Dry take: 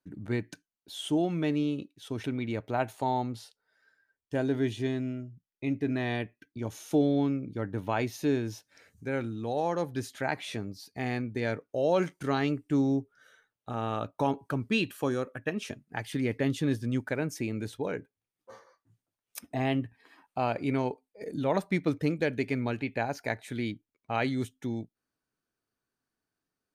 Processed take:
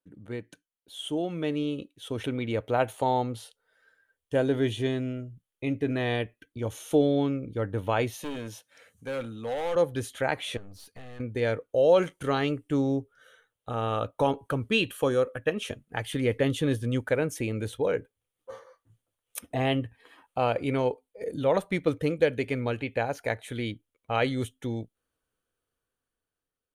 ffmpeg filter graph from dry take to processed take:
ffmpeg -i in.wav -filter_complex "[0:a]asettb=1/sr,asplit=3[link_01][link_02][link_03];[link_01]atrim=end=8.144[link_04];[link_02]atrim=start=8.14:end=9.76,asetpts=PTS-STARTPTS,afade=type=in:duration=0.004:curve=qsin,afade=type=out:start_time=1.616:duration=0.004:curve=qsin,highpass=170,equalizer=frequency=370:width=3.1:gain=-10.5,asoftclip=type=hard:threshold=-33.5dB[link_05];[link_03]atrim=start=9.756[link_06];[link_04][link_05]acrossfade=duration=0.004:curve1=hsin:curve2=qsin[link_07];[link_07][link_06]acrossfade=duration=0.004:curve1=qsin:curve2=hsin,asettb=1/sr,asplit=3[link_08][link_09][link_10];[link_08]atrim=end=10.574[link_11];[link_09]atrim=start=10.57:end=11.2,asetpts=PTS-STARTPTS,afade=type=in:duration=0.004:curve=qsin,afade=type=out:start_time=0.626:duration=0.004:curve=qsin,equalizer=frequency=1500:width=2.8:gain=6,acompressor=threshold=-39dB:ratio=4:attack=3.2:release=140:knee=1:detection=peak,aeval=exprs='(tanh(158*val(0)+0.25)-tanh(0.25))/158':channel_layout=same[link_12];[link_10]atrim=start=11.196[link_13];[link_11][link_12]acrossfade=duration=0.004:curve1=hsin:curve2=qsin[link_14];[link_14][link_13]acrossfade=duration=0.004:curve1=qsin:curve2=hsin,equalizer=frequency=500:width_type=o:width=0.33:gain=10,equalizer=frequency=1250:width_type=o:width=0.33:gain=3,equalizer=frequency=3150:width_type=o:width=0.33:gain=7,equalizer=frequency=5000:width_type=o:width=0.33:gain=-7,equalizer=frequency=10000:width_type=o:width=0.33:gain=7,dynaudnorm=framelen=450:gausssize=7:maxgain=10dB,asubboost=boost=3.5:cutoff=85,volume=-7dB" out.wav

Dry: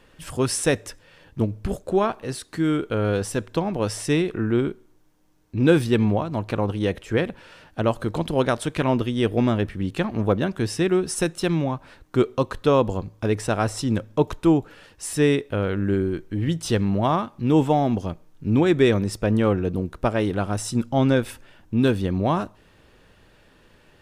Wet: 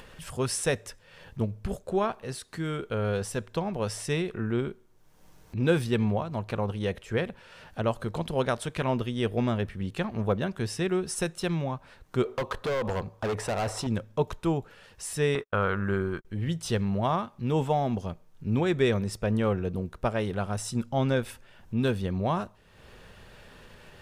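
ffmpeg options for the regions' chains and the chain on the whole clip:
ffmpeg -i in.wav -filter_complex "[0:a]asettb=1/sr,asplit=3[link_01][link_02][link_03];[link_01]atrim=end=12.254[link_04];[link_02]atrim=start=12.25:end=13.87,asetpts=PTS-STARTPTS,afade=type=in:duration=0.004:curve=qsin,afade=type=out:start_time=1.616:duration=0.004:curve=qsin,equalizer=frequency=740:width=0.46:gain=11.5,acompressor=threshold=-11dB:ratio=10:attack=3.2:release=140:knee=1:detection=peak,asoftclip=type=hard:threshold=-20dB[link_05];[link_03]atrim=start=13.866[link_06];[link_04][link_05]acrossfade=duration=0.004:curve1=hsin:curve2=qsin[link_07];[link_07][link_06]acrossfade=duration=0.004:curve1=qsin:curve2=hsin,asettb=1/sr,asplit=3[link_08][link_09][link_10];[link_08]atrim=end=15.354[link_11];[link_09]atrim=start=15.35:end=16.25,asetpts=PTS-STARTPTS,afade=type=in:duration=0.004:curve=qsin,afade=type=out:start_time=0.896:duration=0.004:curve=qsin,agate=range=-44dB:threshold=-33dB:ratio=16:release=100:detection=peak,equalizer=frequency=1200:width=1.3:gain=13[link_12];[link_10]atrim=start=16.246[link_13];[link_11][link_12]acrossfade=duration=0.004:curve1=hsin:curve2=qsin[link_14];[link_14][link_13]acrossfade=duration=0.004:curve1=qsin:curve2=hsin,equalizer=frequency=300:width_type=o:width=0.25:gain=-12.5,acompressor=mode=upward:threshold=-34dB:ratio=2.5,volume=-5dB" out.wav

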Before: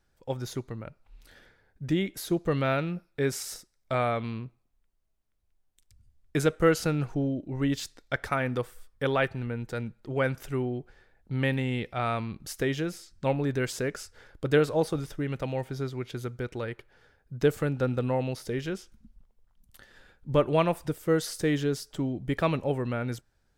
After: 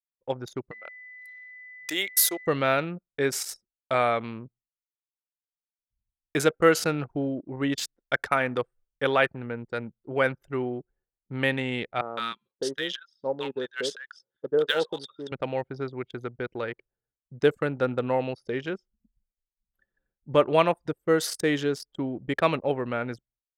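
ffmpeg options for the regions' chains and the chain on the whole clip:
ffmpeg -i in.wav -filter_complex "[0:a]asettb=1/sr,asplit=3[link_01][link_02][link_03];[link_01]atrim=end=0.714[link_04];[link_02]atrim=start=0.71:end=2.47,asetpts=PTS-STARTPTS,afade=type=in:duration=0.004:curve=qsin,afade=type=out:start_time=1.756:duration=0.004:curve=qsin,highpass=530,aemphasis=mode=production:type=75kf,aeval=exprs='val(0)+0.00708*sin(2*PI*2000*n/s)':channel_layout=same[link_05];[link_03]atrim=start=2.466[link_06];[link_04][link_05]acrossfade=duration=0.004:curve1=hsin:curve2=qsin[link_07];[link_07][link_06]acrossfade=duration=0.004:curve1=qsin:curve2=hsin,asettb=1/sr,asplit=3[link_08][link_09][link_10];[link_08]atrim=end=12.014[link_11];[link_09]atrim=start=12.01:end=15.32,asetpts=PTS-STARTPTS,afade=type=in:duration=0.004:curve=qsin,afade=type=out:start_time=3.306:duration=0.004:curve=qsin,highpass=270,equalizer=frequency=300:width_type=q:width=4:gain=-7,equalizer=frequency=700:width_type=q:width=4:gain=-10,equalizer=frequency=1100:width_type=q:width=4:gain=-3,equalizer=frequency=2300:width_type=q:width=4:gain=-9,equalizer=frequency=3400:width_type=q:width=4:gain=9,equalizer=frequency=7400:width_type=q:width=4:gain=-7,lowpass=frequency=8900:width=0.5412,lowpass=frequency=8900:width=1.3066,acrusher=bits=8:mode=log:mix=0:aa=0.000001,acrossover=split=960[link_12][link_13];[link_13]adelay=160[link_14];[link_12][link_14]amix=inputs=2:normalize=0,atrim=end_sample=145971[link_15];[link_10]atrim=start=15.316[link_16];[link_11][link_15]acrossfade=duration=0.004:curve1=hsin:curve2=qsin[link_17];[link_17][link_16]acrossfade=duration=0.004:curve1=qsin:curve2=hsin,agate=range=-33dB:threshold=-54dB:ratio=3:detection=peak,anlmdn=1.58,highpass=frequency=430:poles=1,volume=5.5dB" out.wav

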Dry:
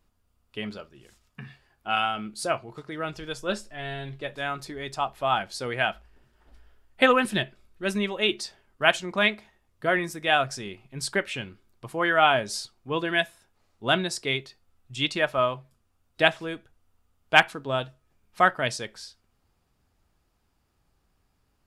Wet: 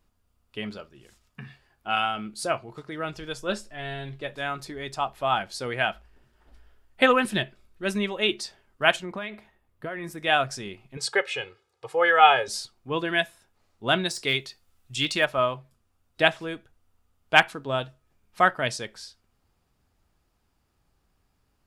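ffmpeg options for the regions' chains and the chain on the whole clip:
ffmpeg -i in.wav -filter_complex "[0:a]asettb=1/sr,asplit=3[link_01][link_02][link_03];[link_01]atrim=end=8.964[link_04];[link_02]atrim=start=8.96:end=10.18,asetpts=PTS-STARTPTS,afade=type=in:duration=0.004:curve=qsin,afade=type=out:start_time=1.216:duration=0.004:curve=qsin,equalizer=frequency=6000:width=0.77:gain=-8.5,acompressor=threshold=-29dB:ratio=12:attack=3.2:release=140:knee=1:detection=peak[link_05];[link_03]atrim=start=10.176[link_06];[link_04][link_05]acrossfade=duration=0.004:curve1=hsin:curve2=qsin[link_07];[link_07][link_06]acrossfade=duration=0.004:curve1=qsin:curve2=hsin,asettb=1/sr,asplit=3[link_08][link_09][link_10];[link_08]atrim=end=10.974[link_11];[link_09]atrim=start=10.97:end=12.48,asetpts=PTS-STARTPTS,afade=type=in:duration=0.004:curve=qsin,afade=type=out:start_time=1.506:duration=0.004:curve=qsin,highpass=110,lowpass=8000,lowshelf=frequency=390:width_type=q:width=3:gain=-6.5,aecho=1:1:2.4:0.8,atrim=end_sample=66591[link_12];[link_10]atrim=start=12.476[link_13];[link_11][link_12]acrossfade=duration=0.004:curve1=hsin:curve2=qsin[link_14];[link_14][link_13]acrossfade=duration=0.004:curve1=qsin:curve2=hsin,asettb=1/sr,asplit=3[link_15][link_16][link_17];[link_15]atrim=end=14.054[link_18];[link_16]atrim=start=14.05:end=15.26,asetpts=PTS-STARTPTS,afade=type=in:duration=0.004:curve=qsin,afade=type=out:start_time=1.206:duration=0.004:curve=qsin,deesser=0.75,highshelf=frequency=2300:gain=8.5[link_19];[link_17]atrim=start=15.256[link_20];[link_18][link_19]acrossfade=duration=0.004:curve1=hsin:curve2=qsin[link_21];[link_21][link_20]acrossfade=duration=0.004:curve1=qsin:curve2=hsin" out.wav

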